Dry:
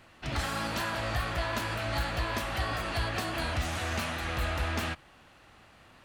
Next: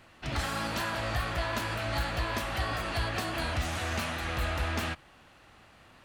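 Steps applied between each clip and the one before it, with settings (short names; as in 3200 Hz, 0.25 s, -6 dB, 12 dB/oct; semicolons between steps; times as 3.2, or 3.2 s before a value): nothing audible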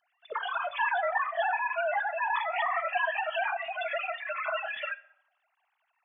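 sine-wave speech; spectral noise reduction 23 dB; reverb RT60 0.75 s, pre-delay 7 ms, DRR 16 dB; gain +2.5 dB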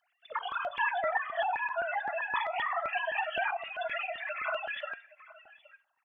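echo 0.82 s -20 dB; stepped notch 7.7 Hz 290–2300 Hz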